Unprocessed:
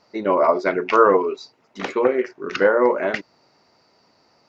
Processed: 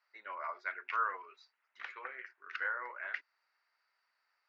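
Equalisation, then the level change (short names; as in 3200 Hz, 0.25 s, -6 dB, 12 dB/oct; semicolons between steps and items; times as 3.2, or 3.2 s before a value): ladder band-pass 1900 Hz, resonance 45%; -4.5 dB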